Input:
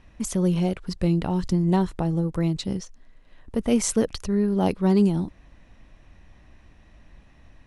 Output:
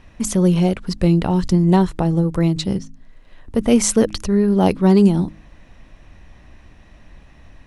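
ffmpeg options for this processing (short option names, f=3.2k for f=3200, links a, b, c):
-filter_complex "[0:a]asettb=1/sr,asplit=3[a][b][c];[a]atrim=end=2.784[d];[b]atrim=start=2.78:end=3.55,asetpts=PTS-STARTPTS,afade=t=in:d=0.004:c=qsin,afade=t=out:st=0.766:d=0.004:c=qsin,acrossover=split=200[e][f];[f]acompressor=threshold=-55dB:ratio=2[g];[e][g]amix=inputs=2:normalize=0[h];[c]atrim=start=3.546[i];[d][h]acrossfade=d=0.004:c1=hsin:c2=qsin[j];[j][i]acrossfade=d=0.004:c1=qsin:c2=hsin,bandreject=f=52.51:t=h:w=4,bandreject=f=105.02:t=h:w=4,bandreject=f=157.53:t=h:w=4,bandreject=f=210.04:t=h:w=4,bandreject=f=262.55:t=h:w=4,bandreject=f=315.06:t=h:w=4,volume=7dB"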